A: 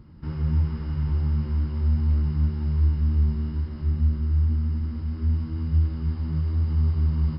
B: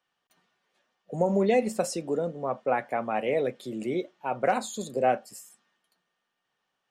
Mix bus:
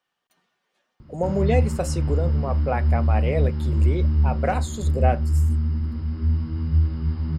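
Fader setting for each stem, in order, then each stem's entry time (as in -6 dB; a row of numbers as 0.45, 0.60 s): +2.0, +0.5 dB; 1.00, 0.00 s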